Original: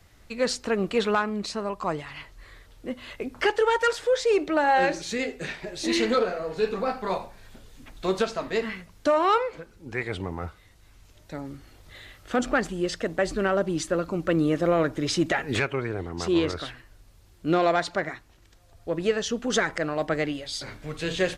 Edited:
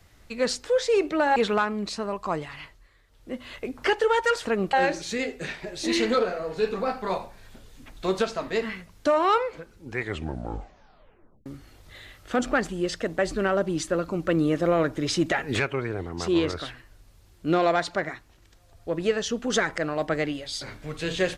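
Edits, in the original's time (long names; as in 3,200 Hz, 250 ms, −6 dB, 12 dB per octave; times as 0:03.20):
0:00.65–0:00.93: swap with 0:04.02–0:04.73
0:02.13–0:02.96: duck −12.5 dB, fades 0.33 s
0:09.99: tape stop 1.47 s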